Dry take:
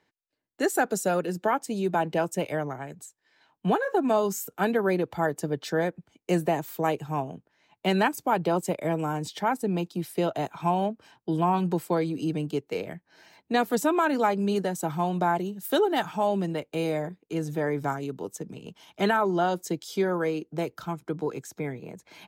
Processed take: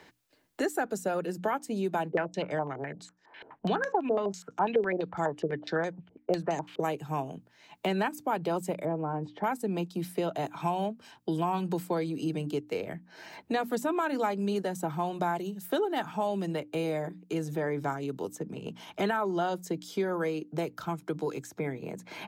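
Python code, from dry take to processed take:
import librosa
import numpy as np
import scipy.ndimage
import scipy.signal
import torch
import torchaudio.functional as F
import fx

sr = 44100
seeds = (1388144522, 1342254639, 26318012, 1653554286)

y = fx.filter_held_lowpass(x, sr, hz=12.0, low_hz=450.0, high_hz=6100.0, at=(2.09, 6.8))
y = fx.cheby1_lowpass(y, sr, hz=920.0, order=2, at=(8.85, 9.44))
y = fx.high_shelf(y, sr, hz=5900.0, db=-8.5, at=(17.56, 18.08))
y = fx.hum_notches(y, sr, base_hz=60, count=5)
y = fx.band_squash(y, sr, depth_pct=70)
y = F.gain(torch.from_numpy(y), -5.0).numpy()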